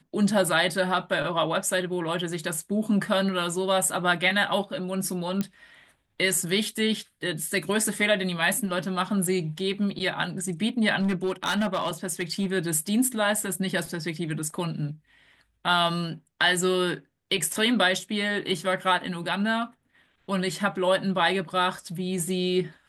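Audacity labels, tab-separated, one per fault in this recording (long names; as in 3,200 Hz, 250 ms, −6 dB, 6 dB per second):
5.410000	5.410000	click −14 dBFS
11.010000	12.460000	clipping −21 dBFS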